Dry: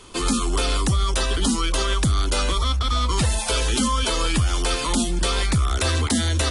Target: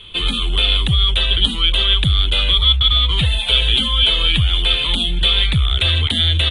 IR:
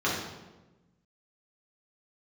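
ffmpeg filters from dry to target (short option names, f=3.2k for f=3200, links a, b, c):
-af "firequalizer=gain_entry='entry(150,0);entry(240,-12);entry(470,-8);entry(1000,-11);entry(3400,13);entry(5200,-29);entry(9300,-14)':delay=0.05:min_phase=1,volume=4.5dB"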